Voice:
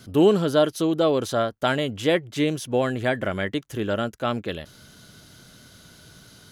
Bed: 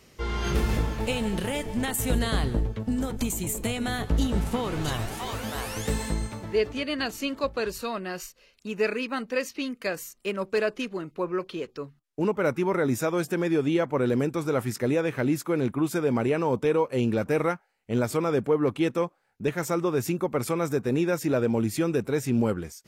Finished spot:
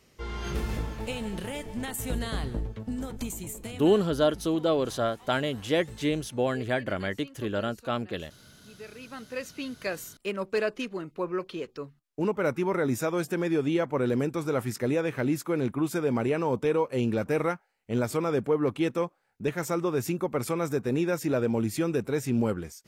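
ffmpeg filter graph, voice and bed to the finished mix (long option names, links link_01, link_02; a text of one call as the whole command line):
ffmpeg -i stem1.wav -i stem2.wav -filter_complex "[0:a]adelay=3650,volume=-4.5dB[link_01];[1:a]volume=11.5dB,afade=type=out:start_time=3.26:duration=0.84:silence=0.211349,afade=type=in:start_time=8.89:duration=1.05:silence=0.133352[link_02];[link_01][link_02]amix=inputs=2:normalize=0" out.wav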